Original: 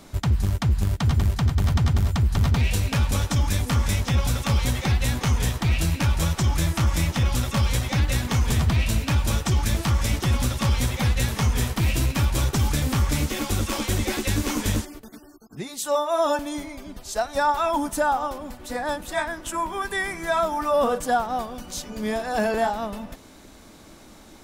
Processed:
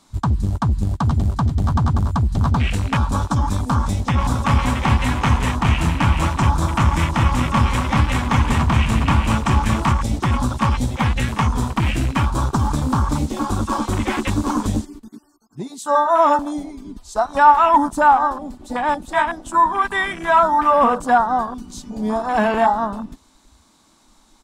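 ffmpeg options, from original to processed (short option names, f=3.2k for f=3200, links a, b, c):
-filter_complex "[0:a]asplit=3[a][b][c];[a]afade=t=out:st=4.19:d=0.02[d];[b]aecho=1:1:234|412:0.376|0.596,afade=t=in:st=4.19:d=0.02,afade=t=out:st=9.92:d=0.02[e];[c]afade=t=in:st=9.92:d=0.02[f];[d][e][f]amix=inputs=3:normalize=0,afwtdn=0.0282,equalizer=f=250:t=o:w=1:g=6,equalizer=f=500:t=o:w=1:g=-4,equalizer=f=1k:t=o:w=1:g=12,equalizer=f=4k:t=o:w=1:g=8,equalizer=f=8k:t=o:w=1:g=11,volume=1.5dB"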